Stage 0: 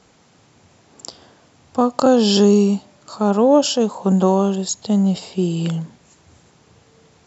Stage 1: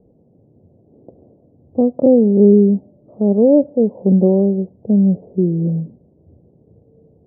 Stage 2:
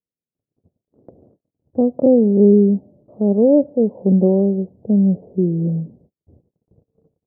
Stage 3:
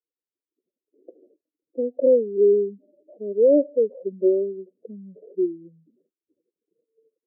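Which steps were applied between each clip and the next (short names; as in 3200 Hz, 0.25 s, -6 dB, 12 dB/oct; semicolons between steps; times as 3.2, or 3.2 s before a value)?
steep low-pass 580 Hz 36 dB/oct; gain +3.5 dB
gate -47 dBFS, range -43 dB; gain -1.5 dB
spectral contrast raised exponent 2.6; Chebyshev high-pass 330 Hz, order 4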